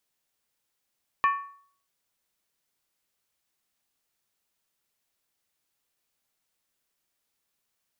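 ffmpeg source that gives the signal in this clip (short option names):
-f lavfi -i "aevalsrc='0.141*pow(10,-3*t/0.54)*sin(2*PI*1120*t)+0.0596*pow(10,-3*t/0.428)*sin(2*PI*1785.3*t)+0.0251*pow(10,-3*t/0.369)*sin(2*PI*2392.3*t)+0.0106*pow(10,-3*t/0.356)*sin(2*PI*2571.5*t)+0.00447*pow(10,-3*t/0.332)*sin(2*PI*2971.4*t)':d=0.63:s=44100"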